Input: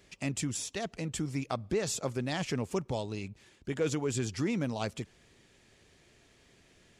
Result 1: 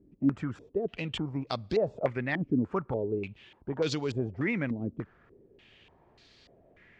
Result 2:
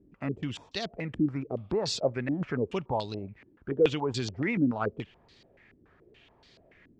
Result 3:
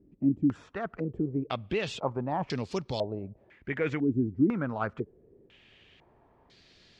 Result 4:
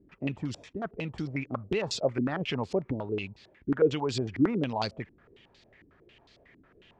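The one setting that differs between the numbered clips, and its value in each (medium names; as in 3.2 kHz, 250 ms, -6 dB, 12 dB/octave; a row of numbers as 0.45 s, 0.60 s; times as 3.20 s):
step-sequenced low-pass, rate: 3.4 Hz, 7 Hz, 2 Hz, 11 Hz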